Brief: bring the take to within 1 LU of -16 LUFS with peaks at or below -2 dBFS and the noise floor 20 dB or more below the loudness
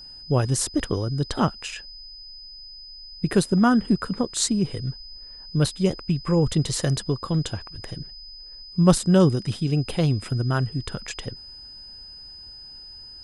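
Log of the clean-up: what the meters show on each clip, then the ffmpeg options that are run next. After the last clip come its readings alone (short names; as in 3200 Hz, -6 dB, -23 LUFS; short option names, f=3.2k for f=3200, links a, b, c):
steady tone 5000 Hz; tone level -40 dBFS; loudness -23.5 LUFS; peak -5.0 dBFS; loudness target -16.0 LUFS
-> -af "bandreject=f=5k:w=30"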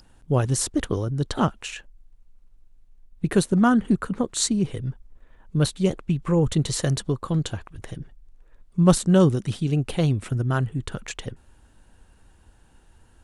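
steady tone none; loudness -23.5 LUFS; peak -5.0 dBFS; loudness target -16.0 LUFS
-> -af "volume=7.5dB,alimiter=limit=-2dB:level=0:latency=1"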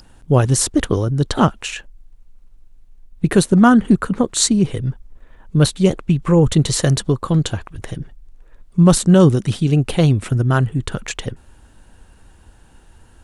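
loudness -16.5 LUFS; peak -2.0 dBFS; noise floor -48 dBFS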